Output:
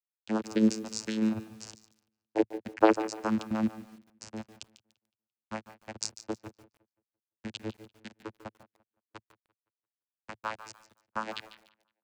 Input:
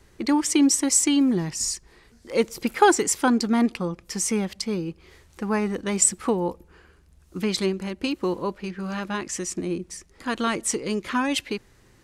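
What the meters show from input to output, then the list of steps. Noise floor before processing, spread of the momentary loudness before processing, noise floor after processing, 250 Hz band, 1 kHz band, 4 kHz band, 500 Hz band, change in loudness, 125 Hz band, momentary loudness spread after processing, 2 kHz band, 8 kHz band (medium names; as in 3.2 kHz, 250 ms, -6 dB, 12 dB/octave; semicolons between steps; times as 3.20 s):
-57 dBFS, 13 LU, under -85 dBFS, -9.0 dB, -9.5 dB, -13.0 dB, -8.0 dB, -8.0 dB, -10.0 dB, 23 LU, -11.5 dB, -21.0 dB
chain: expander on every frequency bin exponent 3; peaking EQ 140 Hz -14 dB 1.6 oct; word length cut 6-bit, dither none; vocoder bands 8, saw 109 Hz; feedback echo behind a low-pass 171 ms, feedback 31%, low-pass 3.5 kHz, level -19 dB; bit-crushed delay 146 ms, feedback 35%, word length 8-bit, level -13.5 dB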